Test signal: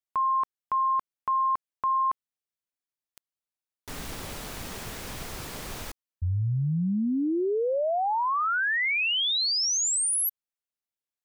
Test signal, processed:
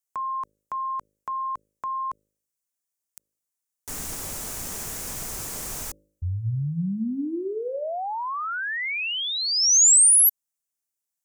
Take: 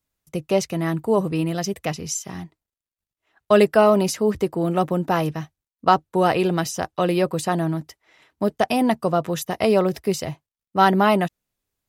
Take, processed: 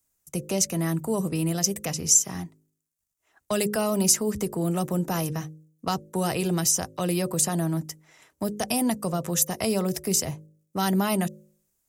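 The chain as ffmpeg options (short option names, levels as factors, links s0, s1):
-filter_complex "[0:a]highshelf=f=5200:t=q:w=1.5:g=9,acrossover=split=210|2900[s0][s1][s2];[s1]acompressor=threshold=0.0355:ratio=2.5:attack=2.1:release=162:knee=2.83:detection=peak[s3];[s0][s3][s2]amix=inputs=3:normalize=0,bandreject=f=52.06:t=h:w=4,bandreject=f=104.12:t=h:w=4,bandreject=f=156.18:t=h:w=4,bandreject=f=208.24:t=h:w=4,bandreject=f=260.3:t=h:w=4,bandreject=f=312.36:t=h:w=4,bandreject=f=364.42:t=h:w=4,bandreject=f=416.48:t=h:w=4,bandreject=f=468.54:t=h:w=4,bandreject=f=520.6:t=h:w=4,bandreject=f=572.66:t=h:w=4"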